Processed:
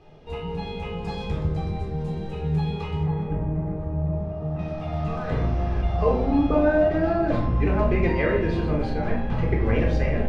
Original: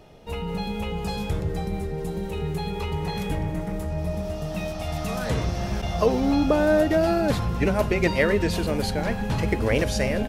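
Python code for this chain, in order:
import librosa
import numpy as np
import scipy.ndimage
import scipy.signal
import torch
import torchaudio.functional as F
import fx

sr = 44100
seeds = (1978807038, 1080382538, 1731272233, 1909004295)

y = fx.lowpass(x, sr, hz=fx.steps((0.0, 4500.0), (3.03, 1200.0), (4.59, 2400.0)), slope=12)
y = fx.room_shoebox(y, sr, seeds[0], volume_m3=730.0, walls='furnished', distance_m=3.8)
y = F.gain(torch.from_numpy(y), -6.5).numpy()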